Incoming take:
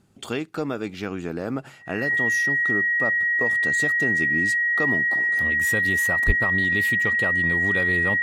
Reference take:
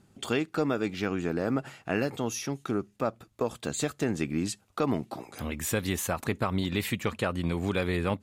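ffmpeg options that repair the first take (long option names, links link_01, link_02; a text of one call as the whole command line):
ffmpeg -i in.wav -filter_complex "[0:a]bandreject=frequency=1900:width=30,asplit=3[link_01][link_02][link_03];[link_01]afade=type=out:start_time=6.26:duration=0.02[link_04];[link_02]highpass=frequency=140:width=0.5412,highpass=frequency=140:width=1.3066,afade=type=in:start_time=6.26:duration=0.02,afade=type=out:start_time=6.38:duration=0.02[link_05];[link_03]afade=type=in:start_time=6.38:duration=0.02[link_06];[link_04][link_05][link_06]amix=inputs=3:normalize=0" out.wav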